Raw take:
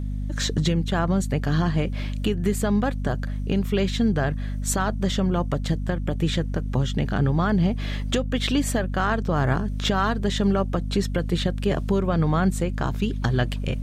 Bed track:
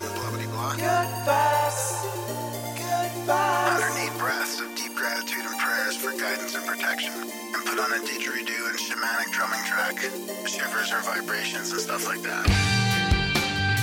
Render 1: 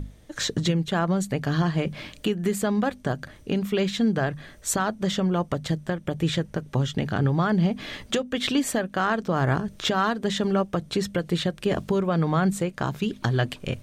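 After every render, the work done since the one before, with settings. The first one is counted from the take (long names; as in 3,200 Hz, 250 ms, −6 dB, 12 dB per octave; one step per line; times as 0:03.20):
mains-hum notches 50/100/150/200/250 Hz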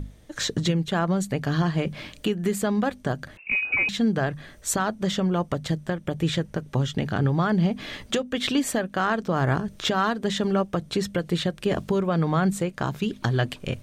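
0:03.37–0:03.89: voice inversion scrambler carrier 2,700 Hz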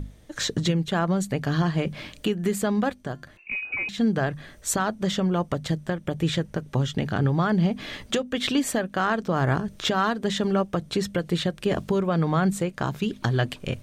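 0:02.93–0:03.98: tuned comb filter 350 Hz, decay 0.47 s, mix 50%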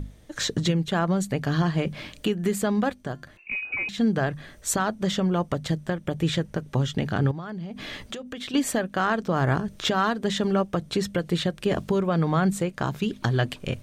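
0:07.31–0:08.54: downward compressor 10 to 1, threshold −31 dBFS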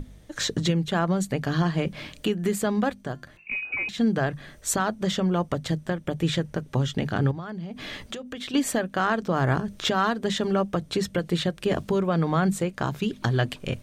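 mains-hum notches 50/100/150/200 Hz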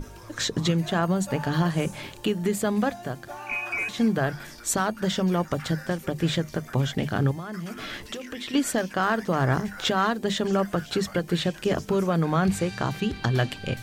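mix in bed track −16.5 dB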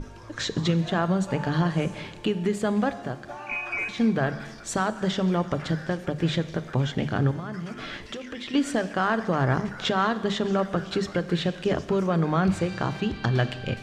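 high-frequency loss of the air 79 metres
four-comb reverb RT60 1.5 s, combs from 28 ms, DRR 13.5 dB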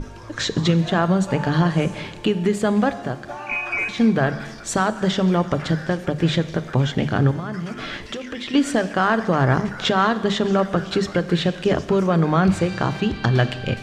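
level +5.5 dB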